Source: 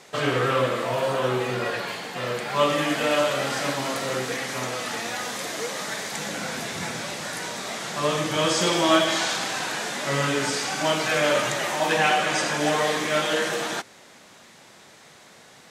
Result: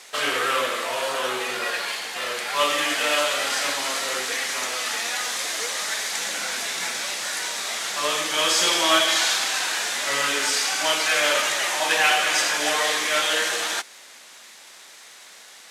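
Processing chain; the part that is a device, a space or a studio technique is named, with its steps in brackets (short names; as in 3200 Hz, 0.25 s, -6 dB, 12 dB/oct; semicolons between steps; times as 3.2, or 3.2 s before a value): HPF 110 Hz 12 dB/oct; early wireless headset (HPF 270 Hz 12 dB/oct; CVSD 64 kbps); tilt shelf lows -7 dB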